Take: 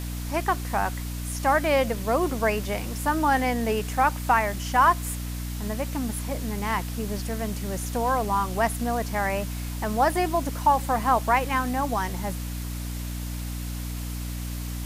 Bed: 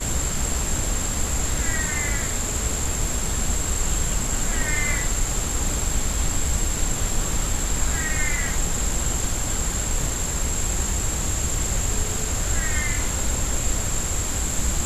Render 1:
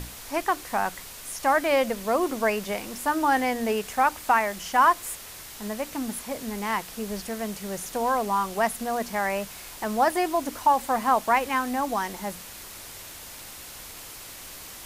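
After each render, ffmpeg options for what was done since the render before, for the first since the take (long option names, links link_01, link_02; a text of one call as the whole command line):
ffmpeg -i in.wav -af "bandreject=frequency=60:width_type=h:width=6,bandreject=frequency=120:width_type=h:width=6,bandreject=frequency=180:width_type=h:width=6,bandreject=frequency=240:width_type=h:width=6,bandreject=frequency=300:width_type=h:width=6" out.wav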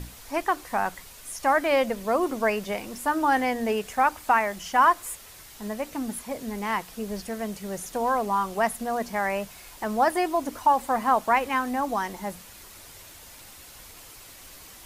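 ffmpeg -i in.wav -af "afftdn=noise_reduction=6:noise_floor=-42" out.wav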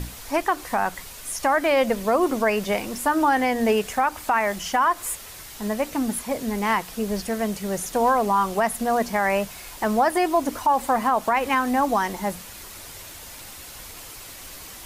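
ffmpeg -i in.wav -af "alimiter=limit=-17.5dB:level=0:latency=1:release=126,acontrast=61" out.wav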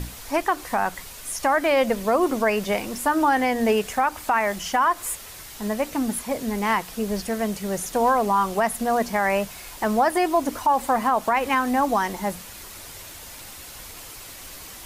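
ffmpeg -i in.wav -af anull out.wav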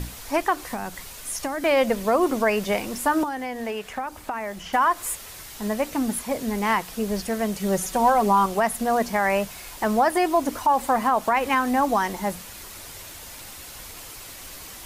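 ffmpeg -i in.wav -filter_complex "[0:a]asettb=1/sr,asplit=3[link_01][link_02][link_03];[link_01]atrim=end=0.724[link_04];[link_02]atrim=start=0.72:end=1.64,asetpts=PTS-STARTPTS,afade=type=in:duration=0.004:curve=qsin,afade=type=out:start_time=0.916:duration=0.004:curve=qsin,acrossover=split=430|3000[link_05][link_06][link_07];[link_06]acompressor=threshold=-35dB:ratio=3:attack=3.2:release=140:knee=2.83:detection=peak[link_08];[link_05][link_08][link_07]amix=inputs=3:normalize=0[link_09];[link_03]atrim=start=1.636[link_10];[link_04][link_09]acrossfade=duration=0.004:curve1=hsin:curve2=qsin[link_11];[link_11][link_10]acrossfade=duration=0.004:curve1=qsin:curve2=hsin,asettb=1/sr,asplit=3[link_12][link_13][link_14];[link_12]atrim=end=3.234[link_15];[link_13]atrim=start=3.23:end=4.73,asetpts=PTS-STARTPTS,afade=type=in:duration=0.004:curve=qsin,afade=type=out:start_time=1.496:duration=0.004:curve=qsin,acrossover=split=620|3400[link_16][link_17][link_18];[link_16]acompressor=threshold=-33dB:ratio=4[link_19];[link_17]acompressor=threshold=-33dB:ratio=4[link_20];[link_18]acompressor=threshold=-49dB:ratio=4[link_21];[link_19][link_20][link_21]amix=inputs=3:normalize=0[link_22];[link_14]atrim=start=4.726[link_23];[link_15][link_22]acrossfade=duration=0.004:curve1=hsin:curve2=qsin[link_24];[link_24][link_23]acrossfade=duration=0.004:curve1=qsin:curve2=hsin,asettb=1/sr,asplit=3[link_25][link_26][link_27];[link_25]atrim=end=7.594[link_28];[link_26]atrim=start=7.59:end=8.46,asetpts=PTS-STARTPTS,afade=type=in:duration=0.004:curve=qsin,afade=type=out:start_time=0.866:duration=0.004:curve=qsin,aecho=1:1:5.3:0.65,atrim=end_sample=38367[link_29];[link_27]atrim=start=8.456[link_30];[link_28][link_29]acrossfade=duration=0.004:curve1=hsin:curve2=qsin[link_31];[link_31][link_30]acrossfade=duration=0.004:curve1=qsin:curve2=hsin" out.wav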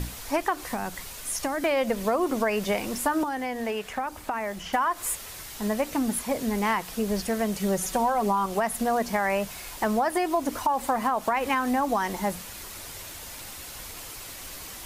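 ffmpeg -i in.wav -af "acompressor=threshold=-21dB:ratio=6" out.wav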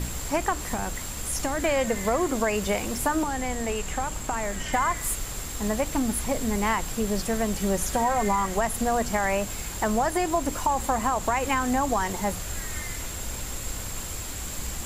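ffmpeg -i in.wav -i bed.wav -filter_complex "[1:a]volume=-10.5dB[link_01];[0:a][link_01]amix=inputs=2:normalize=0" out.wav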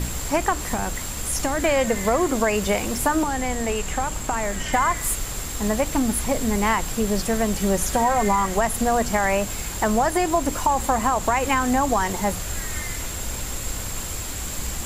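ffmpeg -i in.wav -af "volume=4dB" out.wav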